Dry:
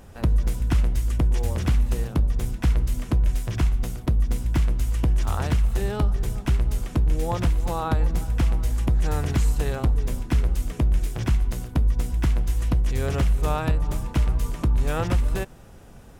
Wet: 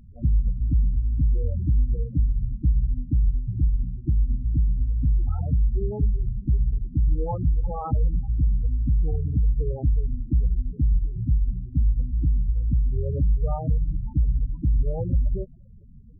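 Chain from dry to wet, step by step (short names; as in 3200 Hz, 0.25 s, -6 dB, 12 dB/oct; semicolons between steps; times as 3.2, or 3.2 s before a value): high shelf 3500 Hz -11 dB; loudest bins only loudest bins 8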